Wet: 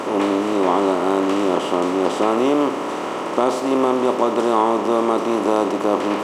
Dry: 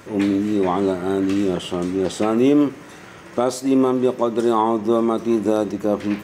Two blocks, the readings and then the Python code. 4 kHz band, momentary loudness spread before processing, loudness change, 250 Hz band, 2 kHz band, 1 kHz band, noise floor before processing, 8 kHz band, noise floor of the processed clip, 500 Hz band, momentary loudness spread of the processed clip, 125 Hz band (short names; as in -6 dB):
+3.5 dB, 6 LU, +1.0 dB, -1.5 dB, +5.0 dB, +5.5 dB, -41 dBFS, +0.5 dB, -26 dBFS, +2.0 dB, 3 LU, -6.5 dB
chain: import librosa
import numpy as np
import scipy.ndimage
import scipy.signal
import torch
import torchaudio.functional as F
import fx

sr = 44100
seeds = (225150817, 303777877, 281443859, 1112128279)

y = fx.bin_compress(x, sr, power=0.4)
y = fx.highpass(y, sr, hz=650.0, slope=6)
y = fx.high_shelf(y, sr, hz=3100.0, db=-11.0)
y = y * 10.0 ** (1.5 / 20.0)